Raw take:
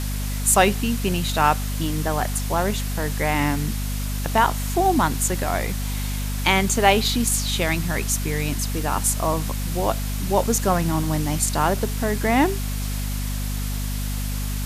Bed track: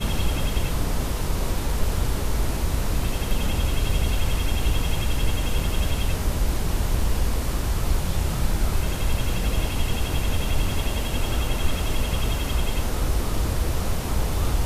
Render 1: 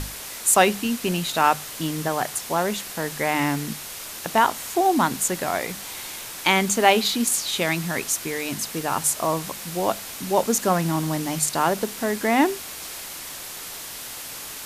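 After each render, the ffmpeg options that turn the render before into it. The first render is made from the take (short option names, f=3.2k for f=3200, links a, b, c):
-af "bandreject=f=50:t=h:w=6,bandreject=f=100:t=h:w=6,bandreject=f=150:t=h:w=6,bandreject=f=200:t=h:w=6,bandreject=f=250:t=h:w=6"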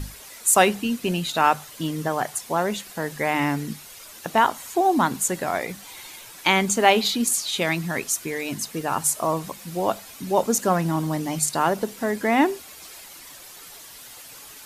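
-af "afftdn=nr=10:nf=-36"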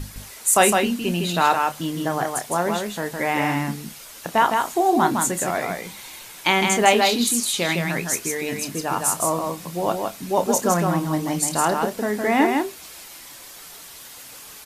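-filter_complex "[0:a]asplit=2[a][b];[b]adelay=29,volume=-11.5dB[c];[a][c]amix=inputs=2:normalize=0,asplit=2[d][e];[e]aecho=0:1:160:0.631[f];[d][f]amix=inputs=2:normalize=0"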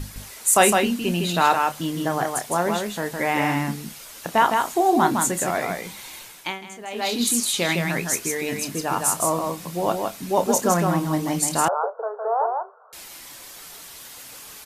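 -filter_complex "[0:a]asettb=1/sr,asplit=3[a][b][c];[a]atrim=end=11.684[d];[b]atrim=start=11.68:end=12.93,asetpts=PTS-STARTPTS,afade=t=in:d=0.004:c=qsin,afade=t=out:st=1.246:d=0.004:c=qsin,asuperpass=centerf=800:order=20:qfactor=0.79[e];[c]atrim=start=12.926[f];[d][e]acrossfade=d=0.004:c1=hsin:c2=qsin[g];[g][f]acrossfade=d=0.004:c1=qsin:c2=hsin,asplit=3[h][i][j];[h]atrim=end=6.59,asetpts=PTS-STARTPTS,afade=t=out:st=6.19:d=0.4:silence=0.105925[k];[i]atrim=start=6.59:end=6.9,asetpts=PTS-STARTPTS,volume=-19.5dB[l];[j]atrim=start=6.9,asetpts=PTS-STARTPTS,afade=t=in:d=0.4:silence=0.105925[m];[k][l][m]concat=n=3:v=0:a=1"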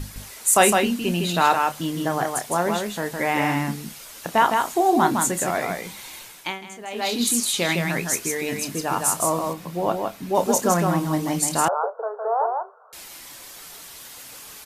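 -filter_complex "[0:a]asettb=1/sr,asplit=3[a][b][c];[a]atrim=end=9.534[d];[b]atrim=start=9.53:end=10.35,asetpts=PTS-STARTPTS,afade=t=in:d=0.004:c=qsin,afade=t=out:st=0.816:d=0.004:c=qsin,equalizer=f=8.7k:t=o:w=2.1:g=-8.5[e];[c]atrim=start=10.346[f];[d][e]acrossfade=d=0.004:c1=hsin:c2=qsin[g];[g][f]acrossfade=d=0.004:c1=qsin:c2=hsin"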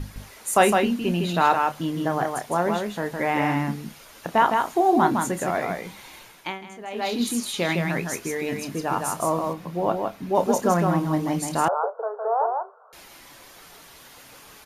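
-af "highshelf=f=3.3k:g=-10,bandreject=f=7.9k:w=10"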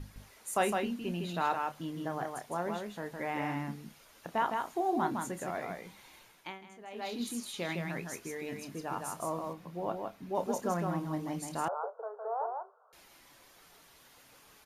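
-af "volume=-12dB"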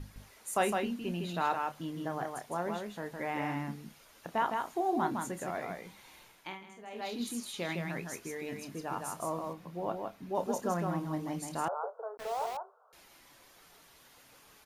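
-filter_complex "[0:a]asettb=1/sr,asplit=3[a][b][c];[a]atrim=end=6.024[d];[b]atrim=start=6.02:end=7.01,asetpts=PTS-STARTPTS,afade=t=in:d=0.004:c=qsin,afade=t=out:st=0.986:d=0.004:c=qsin,asplit=2[e][f];[f]adelay=48,volume=-7.5dB[g];[e][g]amix=inputs=2:normalize=0,atrim=end_sample=43659[h];[c]atrim=start=7.006[i];[d][h]acrossfade=d=0.004:c1=hsin:c2=qsin[j];[j][i]acrossfade=d=0.004:c1=qsin:c2=hsin,asettb=1/sr,asplit=3[k][l][m];[k]atrim=end=10.334[n];[l]atrim=start=10.33:end=10.77,asetpts=PTS-STARTPTS,afade=t=in:d=0.004:c=qsin,afade=t=out:st=0.436:d=0.004:c=qsin,bandreject=f=2.2k:w=12[o];[m]atrim=start=10.766[p];[n][o]acrossfade=d=0.004:c1=hsin:c2=qsin[q];[q][p]acrossfade=d=0.004:c1=qsin:c2=hsin,asettb=1/sr,asplit=3[r][s][t];[r]atrim=end=12.174[u];[s]atrim=start=12.17:end=12.57,asetpts=PTS-STARTPTS,afade=t=in:d=0.004:c=qsin,afade=t=out:st=0.396:d=0.004:c=qsin,aeval=exprs='val(0)*gte(abs(val(0)),0.00944)':c=same[v];[t]atrim=start=12.566[w];[u][v]acrossfade=d=0.004:c1=hsin:c2=qsin[x];[x][w]acrossfade=d=0.004:c1=qsin:c2=hsin"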